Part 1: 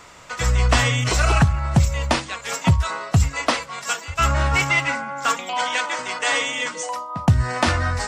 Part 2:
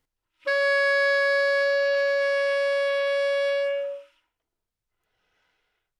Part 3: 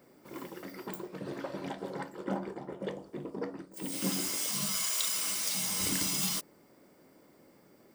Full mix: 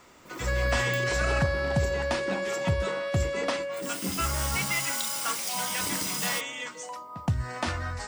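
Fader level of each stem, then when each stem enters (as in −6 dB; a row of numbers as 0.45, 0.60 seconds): −11.0, −8.0, 0.0 decibels; 0.00, 0.00, 0.00 seconds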